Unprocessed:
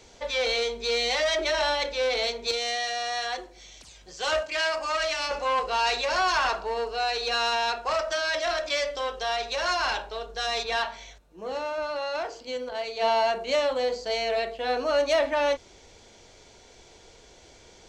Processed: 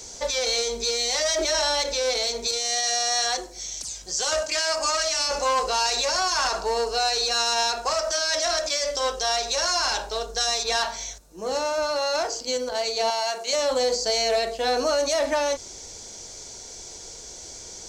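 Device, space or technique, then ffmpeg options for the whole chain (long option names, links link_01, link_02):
over-bright horn tweeter: -filter_complex "[0:a]highshelf=frequency=4200:width_type=q:width=1.5:gain=11.5,alimiter=limit=-19.5dB:level=0:latency=1:release=73,asettb=1/sr,asplit=3[link_01][link_02][link_03];[link_01]atrim=end=13.104[link_04];[link_02]atrim=start=13.1:end=13.53,asetpts=PTS-STARTPTS,afade=type=in:duration=0.004:curve=qsin,afade=type=out:start_time=0.426:duration=0.004:curve=qsin,highpass=frequency=1000:poles=1[link_05];[link_03]atrim=start=13.526[link_06];[link_04][link_05]acrossfade=duration=0.004:curve1=hsin:curve2=qsin[link_07];[link_07][link_06]acrossfade=duration=0.004:curve1=qsin:curve2=hsin,volume=5.5dB"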